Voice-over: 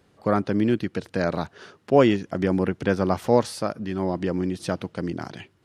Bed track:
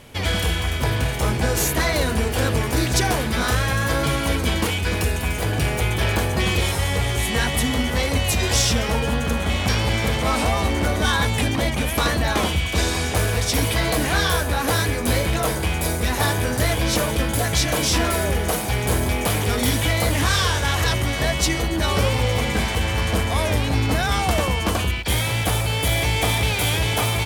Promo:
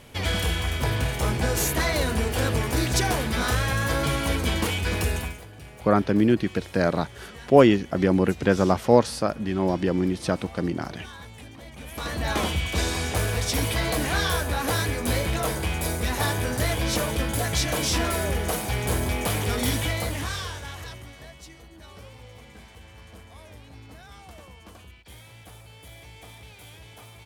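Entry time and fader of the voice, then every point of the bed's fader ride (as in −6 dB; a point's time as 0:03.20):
5.60 s, +2.0 dB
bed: 0:05.19 −3.5 dB
0:05.47 −22.5 dB
0:11.65 −22.5 dB
0:12.31 −4.5 dB
0:19.75 −4.5 dB
0:21.45 −25.5 dB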